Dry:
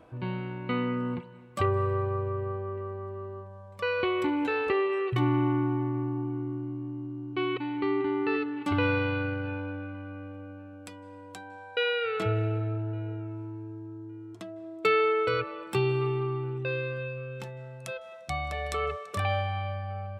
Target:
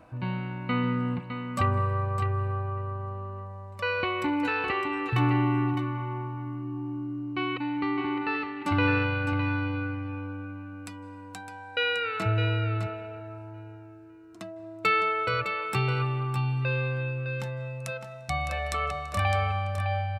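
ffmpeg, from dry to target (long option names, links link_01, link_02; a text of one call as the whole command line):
ffmpeg -i in.wav -af "equalizer=frequency=410:width=4:gain=-15,bandreject=frequency=3300:width=9.2,aecho=1:1:609:0.422,volume=3dB" out.wav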